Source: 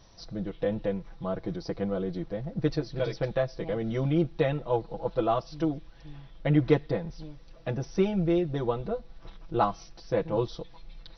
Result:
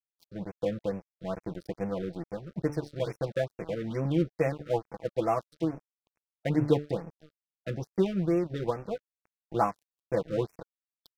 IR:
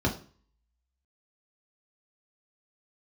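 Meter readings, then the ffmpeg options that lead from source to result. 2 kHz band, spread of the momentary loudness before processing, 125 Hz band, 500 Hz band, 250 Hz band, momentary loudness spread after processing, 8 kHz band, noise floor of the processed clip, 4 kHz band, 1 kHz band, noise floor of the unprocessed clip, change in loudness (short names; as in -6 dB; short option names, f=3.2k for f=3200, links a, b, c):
-2.5 dB, 14 LU, -3.0 dB, -2.0 dB, -2.0 dB, 11 LU, n/a, under -85 dBFS, -4.5 dB, -1.5 dB, -51 dBFS, -2.0 dB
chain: -af "highpass=f=61:w=0.5412,highpass=f=61:w=1.3066,bandreject=f=147.5:t=h:w=4,bandreject=f=295:t=h:w=4,bandreject=f=442.5:t=h:w=4,bandreject=f=590:t=h:w=4,bandreject=f=737.5:t=h:w=4,bandreject=f=885:t=h:w=4,bandreject=f=1.0325k:t=h:w=4,bandreject=f=1.18k:t=h:w=4,bandreject=f=1.3275k:t=h:w=4,bandreject=f=1.475k:t=h:w=4,bandreject=f=1.6225k:t=h:w=4,bandreject=f=1.77k:t=h:w=4,aeval=exprs='sgn(val(0))*max(abs(val(0))-0.0112,0)':c=same,afftfilt=real='re*(1-between(b*sr/1024,830*pow(3900/830,0.5+0.5*sin(2*PI*2.3*pts/sr))/1.41,830*pow(3900/830,0.5+0.5*sin(2*PI*2.3*pts/sr))*1.41))':imag='im*(1-between(b*sr/1024,830*pow(3900/830,0.5+0.5*sin(2*PI*2.3*pts/sr))/1.41,830*pow(3900/830,0.5+0.5*sin(2*PI*2.3*pts/sr))*1.41))':win_size=1024:overlap=0.75"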